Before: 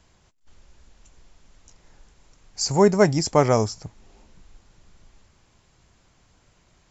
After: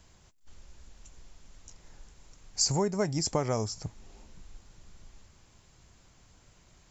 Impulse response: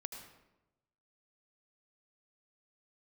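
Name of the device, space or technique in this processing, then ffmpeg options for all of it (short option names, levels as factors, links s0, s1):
ASMR close-microphone chain: -af "lowshelf=f=170:g=3.5,acompressor=threshold=0.0631:ratio=5,highshelf=f=6300:g=8,volume=0.794"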